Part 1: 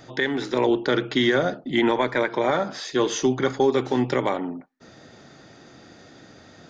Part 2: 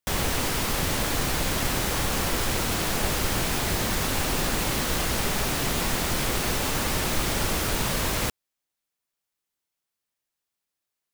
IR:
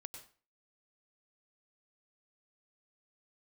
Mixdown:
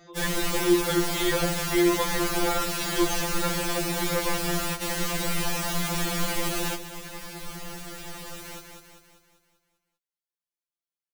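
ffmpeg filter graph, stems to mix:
-filter_complex "[0:a]volume=-4dB,asplit=2[link_01][link_02];[1:a]acontrast=64,adelay=100,volume=-6.5dB,asplit=2[link_03][link_04];[link_04]volume=-12dB[link_05];[link_02]apad=whole_len=495339[link_06];[link_03][link_06]sidechaingate=range=-33dB:threshold=-58dB:ratio=16:detection=peak[link_07];[link_05]aecho=0:1:196|392|588|784|980|1176|1372|1568:1|0.52|0.27|0.141|0.0731|0.038|0.0198|0.0103[link_08];[link_01][link_07][link_08]amix=inputs=3:normalize=0,afftfilt=real='re*2.83*eq(mod(b,8),0)':imag='im*2.83*eq(mod(b,8),0)':win_size=2048:overlap=0.75"

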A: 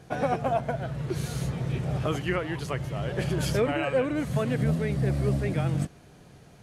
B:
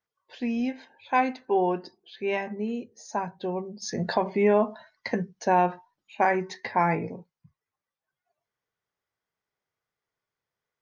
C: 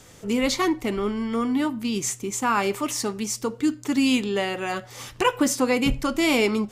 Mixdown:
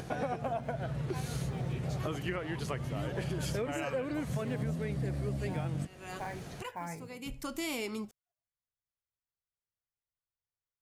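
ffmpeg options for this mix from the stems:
ffmpeg -i stem1.wav -i stem2.wav -i stem3.wav -filter_complex "[0:a]acompressor=mode=upward:threshold=-37dB:ratio=2.5,volume=1dB[link_01];[1:a]asubboost=boost=9:cutoff=88,acrusher=bits=7:mode=log:mix=0:aa=0.000001,volume=-17dB,asplit=2[link_02][link_03];[2:a]crystalizer=i=1.5:c=0,adelay=1400,volume=-12.5dB[link_04];[link_03]apad=whole_len=357689[link_05];[link_04][link_05]sidechaincompress=threshold=-58dB:ratio=8:attack=40:release=390[link_06];[link_01][link_02][link_06]amix=inputs=3:normalize=0,acompressor=threshold=-33dB:ratio=4" out.wav

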